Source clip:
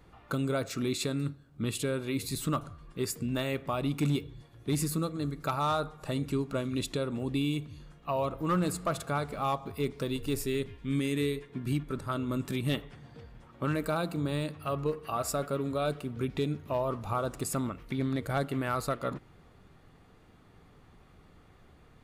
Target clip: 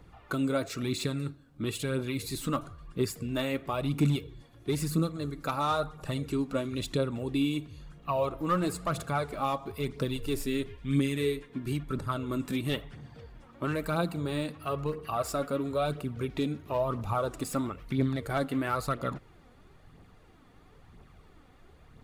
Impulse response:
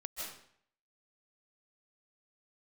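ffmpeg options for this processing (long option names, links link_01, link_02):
-filter_complex "[0:a]acrossover=split=740|4900[link_01][link_02][link_03];[link_03]asoftclip=type=tanh:threshold=-38.5dB[link_04];[link_01][link_02][link_04]amix=inputs=3:normalize=0,aphaser=in_gain=1:out_gain=1:delay=4.2:decay=0.44:speed=1:type=triangular"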